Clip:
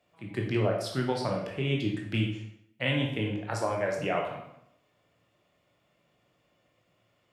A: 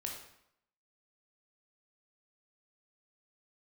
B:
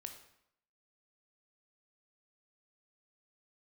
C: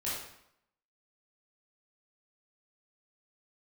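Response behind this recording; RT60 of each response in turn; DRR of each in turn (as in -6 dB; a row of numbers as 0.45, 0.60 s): A; 0.75, 0.75, 0.75 s; -0.5, 5.0, -9.0 dB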